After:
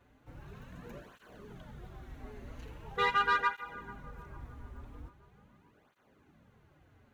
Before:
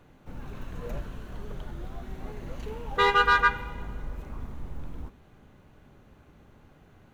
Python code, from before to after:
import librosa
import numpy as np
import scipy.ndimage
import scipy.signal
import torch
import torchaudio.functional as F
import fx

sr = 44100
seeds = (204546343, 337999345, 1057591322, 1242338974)

p1 = fx.peak_eq(x, sr, hz=1800.0, db=3.0, octaves=0.77)
p2 = p1 + fx.echo_bbd(p1, sr, ms=440, stages=4096, feedback_pct=52, wet_db=-18, dry=0)
p3 = fx.flanger_cancel(p2, sr, hz=0.42, depth_ms=6.5)
y = p3 * 10.0 ** (-5.5 / 20.0)